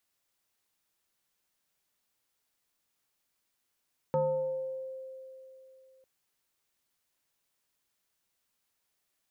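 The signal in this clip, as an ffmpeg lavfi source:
ffmpeg -f lavfi -i "aevalsrc='0.0668*pow(10,-3*t/3.14)*sin(2*PI*525*t+0.89*pow(10,-3*t/1.32)*sin(2*PI*0.71*525*t))':duration=1.9:sample_rate=44100" out.wav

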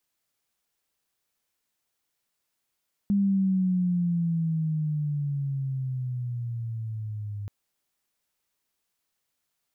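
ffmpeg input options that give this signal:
ffmpeg -f lavfi -i "aevalsrc='pow(10,(-19.5-12*t/4.38)/20)*sin(2*PI*202*4.38/(-12*log(2)/12)*(exp(-12*log(2)/12*t/4.38)-1))':duration=4.38:sample_rate=44100" out.wav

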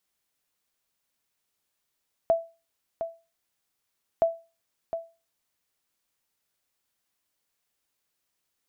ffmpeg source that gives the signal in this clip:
ffmpeg -f lavfi -i "aevalsrc='0.2*(sin(2*PI*664*mod(t,1.92))*exp(-6.91*mod(t,1.92)/0.3)+0.335*sin(2*PI*664*max(mod(t,1.92)-0.71,0))*exp(-6.91*max(mod(t,1.92)-0.71,0)/0.3))':duration=3.84:sample_rate=44100" out.wav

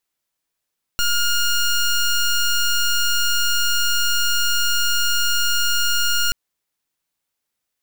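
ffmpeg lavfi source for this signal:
ffmpeg -f lavfi -i "aevalsrc='0.126*(2*lt(mod(1420*t,1),0.14)-1)':duration=5.33:sample_rate=44100" out.wav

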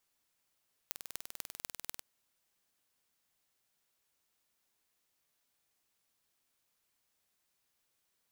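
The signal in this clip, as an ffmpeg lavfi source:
ffmpeg -f lavfi -i "aevalsrc='0.316*eq(mod(n,2172),0)*(0.5+0.5*eq(mod(n,10860),0))':duration=1.11:sample_rate=44100" out.wav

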